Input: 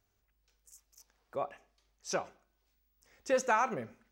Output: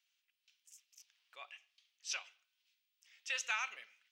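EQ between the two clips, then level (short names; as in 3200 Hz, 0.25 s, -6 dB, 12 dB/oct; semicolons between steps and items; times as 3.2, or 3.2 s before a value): resonant high-pass 2900 Hz, resonance Q 2.8; LPF 3700 Hz 6 dB/oct; +2.5 dB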